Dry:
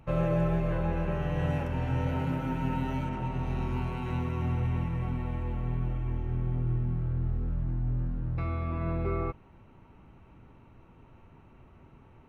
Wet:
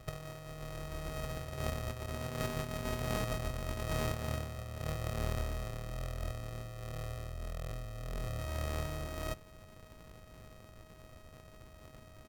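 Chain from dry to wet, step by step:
samples sorted by size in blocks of 64 samples
compressor whose output falls as the input rises −33 dBFS, ratio −0.5
pitch shifter −1.5 semitones
level −4 dB

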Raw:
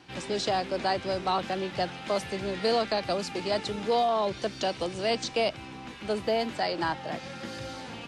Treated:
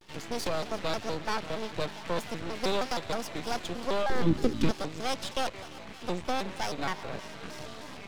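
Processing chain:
half-wave rectification
0:04.09–0:04.70: low shelf with overshoot 470 Hz +11 dB, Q 3
feedback echo with a high-pass in the loop 176 ms, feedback 73%, level −15 dB
pitch modulation by a square or saw wave square 3.2 Hz, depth 250 cents

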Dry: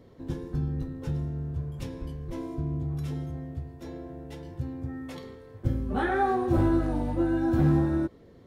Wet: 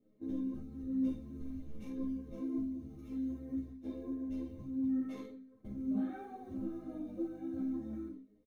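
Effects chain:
0:04.29–0:04.77: low-shelf EQ 130 Hz +10.5 dB
noise gate −40 dBFS, range −16 dB
downward compressor 16 to 1, threshold −37 dBFS, peak gain reduction 19.5 dB
flanger 0.43 Hz, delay 7.3 ms, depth 8.1 ms, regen +65%
floating-point word with a short mantissa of 4 bits
0:01.37–0:02.00: background noise brown −55 dBFS
resonators tuned to a chord G#3 major, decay 0.28 s
ambience of single reflections 45 ms −5 dB, 71 ms −12 dB
convolution reverb RT60 0.15 s, pre-delay 3 ms, DRR 19.5 dB
string-ensemble chorus
level +12 dB

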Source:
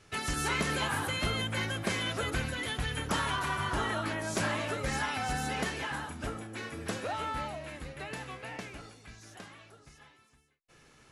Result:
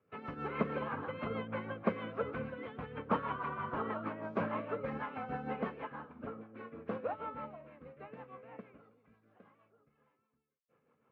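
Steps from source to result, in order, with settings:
loudspeaker in its box 140–2,100 Hz, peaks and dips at 230 Hz +6 dB, 340 Hz −4 dB, 490 Hz +9 dB, 1,100 Hz +7 dB, 1,800 Hz −8 dB
rotating-speaker cabinet horn 6.3 Hz
expander for the loud parts 1.5 to 1, over −51 dBFS

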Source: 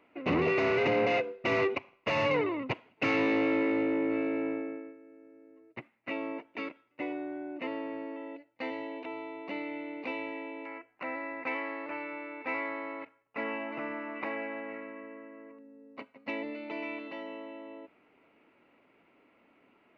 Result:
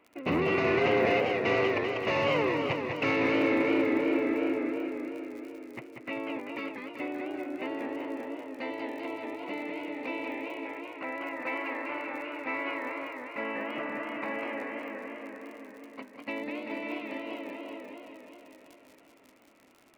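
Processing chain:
surface crackle 35 per second −41 dBFS
feedback echo with a swinging delay time 194 ms, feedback 72%, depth 172 cents, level −5 dB

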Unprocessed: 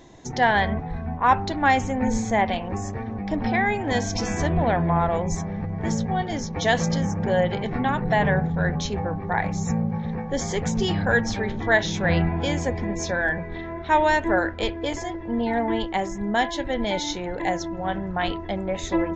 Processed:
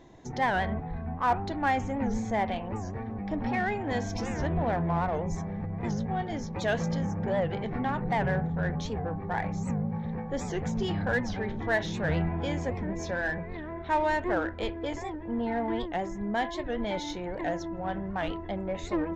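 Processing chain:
high-shelf EQ 3,900 Hz −10 dB
in parallel at −4 dB: soft clipping −25 dBFS, distortion −8 dB
on the sum: wow of a warped record 78 rpm, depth 160 cents
level −8.5 dB

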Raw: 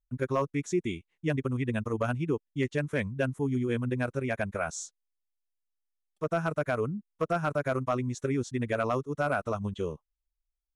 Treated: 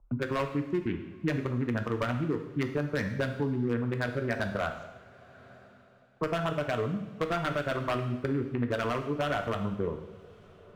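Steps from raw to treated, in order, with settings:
adaptive Wiener filter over 25 samples
in parallel at +1.5 dB: brickwall limiter −26.5 dBFS, peak gain reduction 8 dB
on the sum: auto-filter low-pass saw up 7.6 Hz 960–2,200 Hz
wave folding −16.5 dBFS
coupled-rooms reverb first 0.74 s, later 2.9 s, from −24 dB, DRR 5 dB
multiband upward and downward compressor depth 70%
level −6 dB

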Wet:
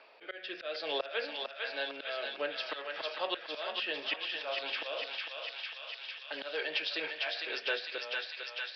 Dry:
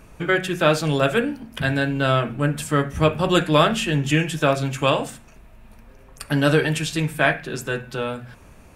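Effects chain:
noise gate −37 dBFS, range −11 dB
high-pass filter 560 Hz 24 dB per octave
parametric band 1,300 Hz −6 dB 1.2 octaves
in parallel at −1 dB: downward compressor 5 to 1, threshold −34 dBFS, peak gain reduction 16.5 dB
on the sum: volume swells 342 ms
rotating-speaker cabinet horn 0.6 Hz, later 6.3 Hz, at 0:04.74
on a send: feedback echo with a high-pass in the loop 452 ms, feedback 75%, high-pass 1,100 Hz, level −3 dB
on the sum: downsampling to 11,025 Hz
multiband upward and downward compressor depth 40%
level −2.5 dB

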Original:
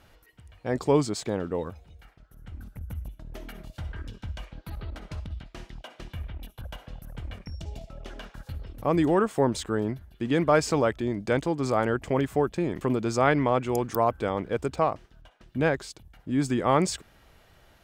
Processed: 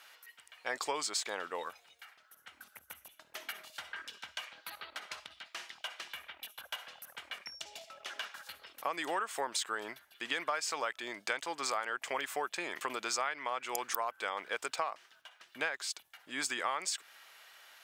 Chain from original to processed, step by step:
high-pass filter 1,300 Hz 12 dB per octave
downward compressor 12 to 1, threshold −37 dBFS, peak gain reduction 16 dB
level +6.5 dB

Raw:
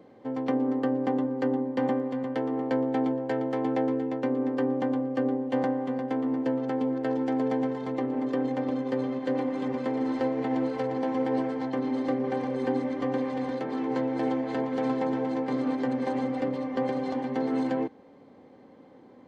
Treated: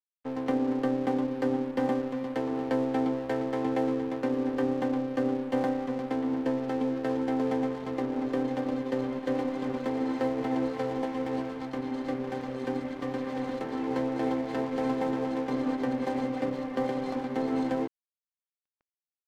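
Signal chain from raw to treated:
0:11.05–0:13.27: parametric band 510 Hz −3.5 dB 2.7 octaves
dead-zone distortion −42 dBFS

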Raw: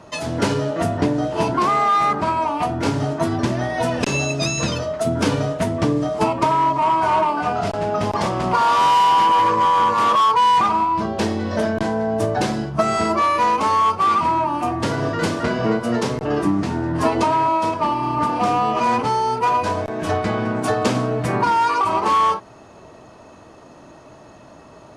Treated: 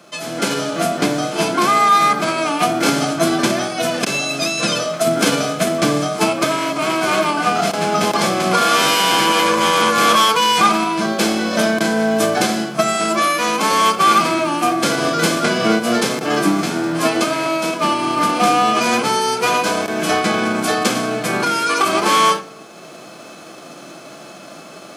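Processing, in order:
spectral envelope flattened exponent 0.6
high-pass filter 160 Hz 24 dB per octave
automatic gain control gain up to 9 dB
notch comb filter 940 Hz
rectangular room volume 2,500 cubic metres, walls furnished, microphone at 0.83 metres
level −1 dB

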